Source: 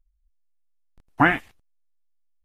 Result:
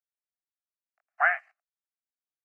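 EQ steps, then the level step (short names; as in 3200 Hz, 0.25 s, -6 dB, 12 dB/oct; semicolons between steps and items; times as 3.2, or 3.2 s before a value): steep high-pass 660 Hz 72 dB/oct; Bessel low-pass 1900 Hz, order 2; fixed phaser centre 940 Hz, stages 6; 0.0 dB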